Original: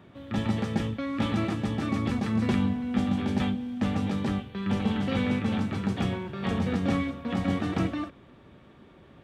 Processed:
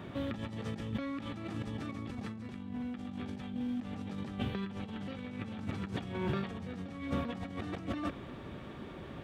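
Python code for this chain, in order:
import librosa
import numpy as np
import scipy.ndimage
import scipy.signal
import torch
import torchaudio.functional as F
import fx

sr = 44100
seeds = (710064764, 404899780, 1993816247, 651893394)

y = fx.over_compress(x, sr, threshold_db=-38.0, ratio=-1.0)
y = y * 10.0 ** (-1.5 / 20.0)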